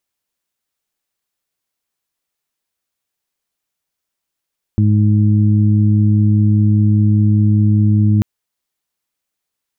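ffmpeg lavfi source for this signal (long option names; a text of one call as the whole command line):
ffmpeg -f lavfi -i "aevalsrc='0.316*sin(2*PI*105*t)+0.178*sin(2*PI*210*t)+0.0708*sin(2*PI*315*t)':duration=3.44:sample_rate=44100" out.wav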